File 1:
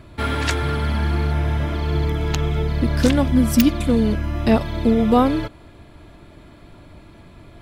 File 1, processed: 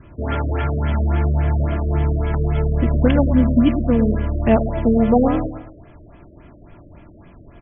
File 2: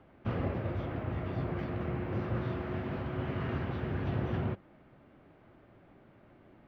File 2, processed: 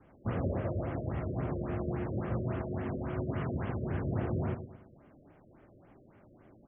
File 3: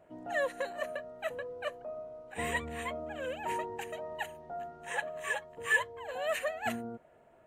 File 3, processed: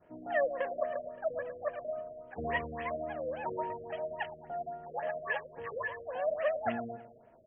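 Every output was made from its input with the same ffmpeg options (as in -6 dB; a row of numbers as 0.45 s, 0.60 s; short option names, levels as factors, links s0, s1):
-filter_complex "[0:a]asplit=2[s0][s1];[s1]adelay=110,lowpass=f=4500:p=1,volume=0.335,asplit=2[s2][s3];[s3]adelay=110,lowpass=f=4500:p=1,volume=0.41,asplit=2[s4][s5];[s5]adelay=110,lowpass=f=4500:p=1,volume=0.41,asplit=2[s6][s7];[s7]adelay=110,lowpass=f=4500:p=1,volume=0.41[s8];[s0][s2][s4][s6][s8]amix=inputs=5:normalize=0,adynamicequalizer=threshold=0.00631:dfrequency=640:dqfactor=3.8:tfrequency=640:tqfactor=3.8:attack=5:release=100:ratio=0.375:range=2.5:mode=boostabove:tftype=bell,afftfilt=real='re*lt(b*sr/1024,610*pow(3500/610,0.5+0.5*sin(2*PI*3.6*pts/sr)))':imag='im*lt(b*sr/1024,610*pow(3500/610,0.5+0.5*sin(2*PI*3.6*pts/sr)))':win_size=1024:overlap=0.75"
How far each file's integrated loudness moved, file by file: +1.0 LU, +0.5 LU, 0.0 LU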